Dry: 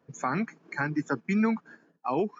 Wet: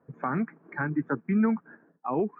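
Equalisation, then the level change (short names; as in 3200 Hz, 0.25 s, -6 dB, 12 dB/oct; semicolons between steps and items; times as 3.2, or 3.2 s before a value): LPF 1700 Hz 24 dB/oct; dynamic EQ 780 Hz, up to -4 dB, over -41 dBFS, Q 0.88; +2.0 dB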